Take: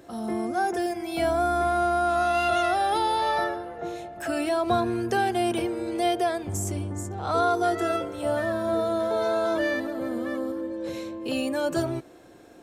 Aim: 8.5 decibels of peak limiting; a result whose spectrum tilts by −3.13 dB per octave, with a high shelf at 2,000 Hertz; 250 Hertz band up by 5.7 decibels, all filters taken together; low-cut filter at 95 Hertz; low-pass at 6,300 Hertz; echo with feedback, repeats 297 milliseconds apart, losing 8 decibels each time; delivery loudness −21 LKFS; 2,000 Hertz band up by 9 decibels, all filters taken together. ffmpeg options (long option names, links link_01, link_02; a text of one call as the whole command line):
ffmpeg -i in.wav -af "highpass=95,lowpass=6300,equalizer=frequency=250:width_type=o:gain=8,highshelf=frequency=2000:gain=6,equalizer=frequency=2000:width_type=o:gain=8.5,alimiter=limit=-16.5dB:level=0:latency=1,aecho=1:1:297|594|891|1188|1485:0.398|0.159|0.0637|0.0255|0.0102,volume=3.5dB" out.wav